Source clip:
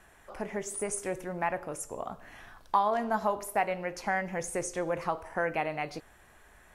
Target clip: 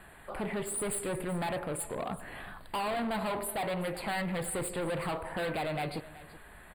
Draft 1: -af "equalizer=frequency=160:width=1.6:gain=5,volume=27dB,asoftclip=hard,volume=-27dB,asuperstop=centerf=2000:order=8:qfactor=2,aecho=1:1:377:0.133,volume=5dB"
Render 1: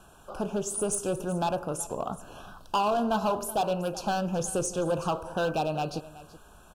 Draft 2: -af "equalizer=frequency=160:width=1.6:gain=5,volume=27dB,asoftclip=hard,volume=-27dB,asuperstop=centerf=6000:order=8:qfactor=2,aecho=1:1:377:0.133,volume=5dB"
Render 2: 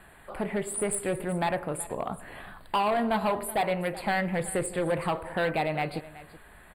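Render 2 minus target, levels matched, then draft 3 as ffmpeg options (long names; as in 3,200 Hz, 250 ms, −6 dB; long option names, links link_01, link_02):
gain into a clipping stage and back: distortion −6 dB
-af "equalizer=frequency=160:width=1.6:gain=5,volume=36dB,asoftclip=hard,volume=-36dB,asuperstop=centerf=6000:order=8:qfactor=2,aecho=1:1:377:0.133,volume=5dB"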